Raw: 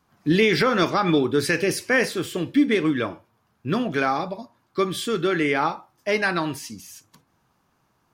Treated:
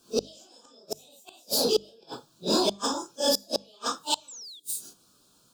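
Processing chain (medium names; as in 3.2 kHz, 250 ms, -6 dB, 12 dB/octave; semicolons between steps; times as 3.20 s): phase randomisation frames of 200 ms; painted sound fall, 6.29–6.76 s, 2.2–5.5 kHz -20 dBFS; resonant high shelf 2.1 kHz +11 dB, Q 1.5; inverted gate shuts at -11 dBFS, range -38 dB; wide varispeed 1.47×; hum notches 50/100/150/200 Hz; in parallel at -5 dB: hard clipper -25.5 dBFS, distortion -7 dB; on the sum: Butterworth band-stop 2 kHz, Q 1.6; on a send at -23.5 dB: reverberation RT60 0.50 s, pre-delay 3 ms; on the sum: trim -2 dB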